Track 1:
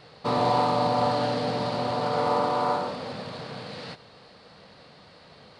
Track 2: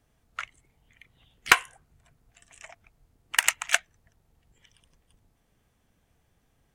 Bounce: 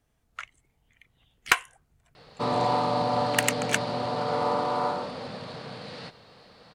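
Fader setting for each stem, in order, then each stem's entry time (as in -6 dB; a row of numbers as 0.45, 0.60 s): -2.0, -3.5 dB; 2.15, 0.00 s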